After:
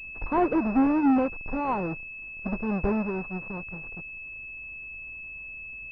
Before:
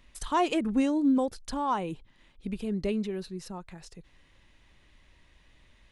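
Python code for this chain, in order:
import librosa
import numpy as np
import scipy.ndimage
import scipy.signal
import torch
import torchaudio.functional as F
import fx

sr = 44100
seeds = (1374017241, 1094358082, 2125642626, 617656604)

y = fx.halfwave_hold(x, sr)
y = fx.air_absorb(y, sr, metres=53.0)
y = fx.pwm(y, sr, carrier_hz=2600.0)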